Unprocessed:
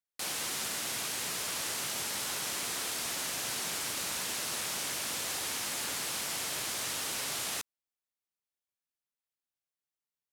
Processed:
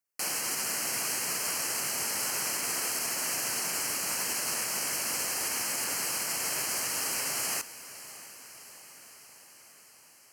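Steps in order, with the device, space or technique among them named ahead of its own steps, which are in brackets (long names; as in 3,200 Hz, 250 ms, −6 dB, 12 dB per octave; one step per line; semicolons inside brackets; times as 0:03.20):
PA system with an anti-feedback notch (high-pass filter 130 Hz 6 dB per octave; Butterworth band-reject 3,600 Hz, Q 2.8; brickwall limiter −27.5 dBFS, peak gain reduction 4 dB)
high-shelf EQ 8,700 Hz +3.5 dB
feedback delay with all-pass diffusion 629 ms, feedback 67%, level −16 dB
level +4.5 dB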